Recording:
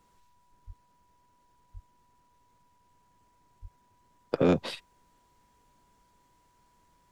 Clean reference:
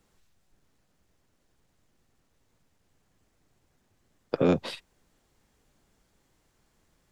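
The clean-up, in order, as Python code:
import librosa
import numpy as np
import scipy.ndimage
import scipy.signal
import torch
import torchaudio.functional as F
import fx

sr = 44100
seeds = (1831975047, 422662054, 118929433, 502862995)

y = fx.fix_declip(x, sr, threshold_db=-14.0)
y = fx.notch(y, sr, hz=980.0, q=30.0)
y = fx.highpass(y, sr, hz=140.0, slope=24, at=(0.66, 0.78), fade=0.02)
y = fx.highpass(y, sr, hz=140.0, slope=24, at=(1.73, 1.85), fade=0.02)
y = fx.highpass(y, sr, hz=140.0, slope=24, at=(3.61, 3.73), fade=0.02)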